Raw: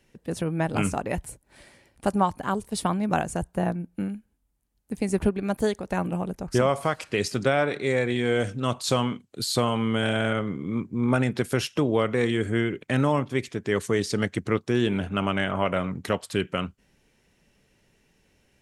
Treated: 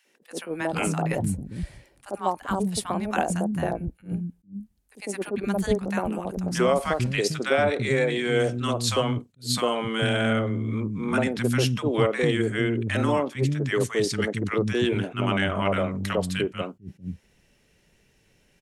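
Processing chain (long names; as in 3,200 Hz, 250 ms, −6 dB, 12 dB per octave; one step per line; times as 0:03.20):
three-band delay without the direct sound highs, mids, lows 50/450 ms, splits 250/950 Hz
level that may rise only so fast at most 260 dB per second
level +2.5 dB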